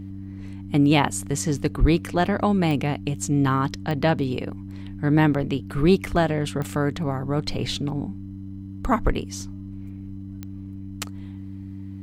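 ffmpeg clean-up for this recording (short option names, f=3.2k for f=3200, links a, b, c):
-af "adeclick=t=4,bandreject=f=97:t=h:w=4,bandreject=f=194:t=h:w=4,bandreject=f=291:t=h:w=4"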